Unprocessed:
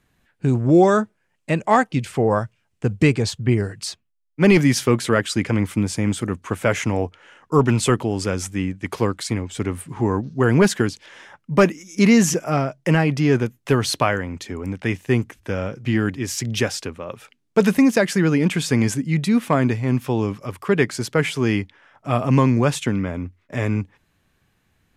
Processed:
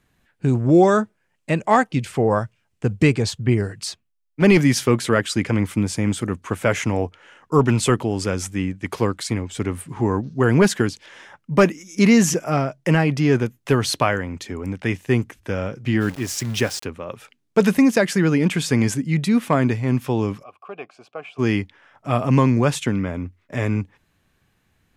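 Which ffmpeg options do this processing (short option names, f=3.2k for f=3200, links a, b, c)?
-filter_complex "[0:a]asettb=1/sr,asplit=3[a][b][c];[a]atrim=end=3.724[d];[b]atrim=start=3.72:end=4.42,asetpts=PTS-STARTPTS,afade=t=in:d=0.004:c=qsin,afade=t=out:st=0.696:d=0.004:c=qsin,asoftclip=type=hard:threshold=-17.5dB[e];[c]atrim=start=4.416[f];[d][e]acrossfade=d=0.004:c1=hsin:c2=qsin[g];[g][f]acrossfade=d=0.004:c1=qsin:c2=hsin,asplit=3[h][i][j];[h]afade=t=out:st=16:d=0.02[k];[i]aeval=exprs='val(0)*gte(abs(val(0)),0.0224)':c=same,afade=t=in:st=16:d=0.02,afade=t=out:st=16.83:d=0.02[l];[j]afade=t=in:st=16.83:d=0.02[m];[k][l][m]amix=inputs=3:normalize=0,asplit=3[n][o][p];[n]afade=t=out:st=20.42:d=0.02[q];[o]asplit=3[r][s][t];[r]bandpass=f=730:t=q:w=8,volume=0dB[u];[s]bandpass=f=1.09k:t=q:w=8,volume=-6dB[v];[t]bandpass=f=2.44k:t=q:w=8,volume=-9dB[w];[u][v][w]amix=inputs=3:normalize=0,afade=t=in:st=20.42:d=0.02,afade=t=out:st=21.38:d=0.02[x];[p]afade=t=in:st=21.38:d=0.02[y];[q][x][y]amix=inputs=3:normalize=0"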